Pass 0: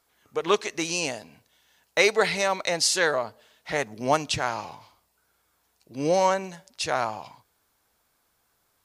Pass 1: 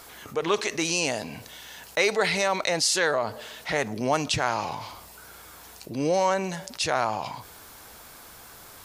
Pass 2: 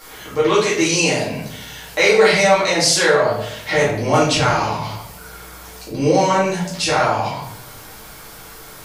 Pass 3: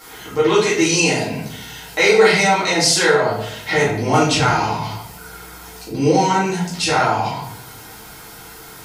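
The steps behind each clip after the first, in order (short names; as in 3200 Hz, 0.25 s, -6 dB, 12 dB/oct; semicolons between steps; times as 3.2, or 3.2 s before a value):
fast leveller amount 50%; gain -3.5 dB
shoebox room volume 110 m³, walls mixed, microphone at 2.2 m
notch comb 570 Hz; gain +1.5 dB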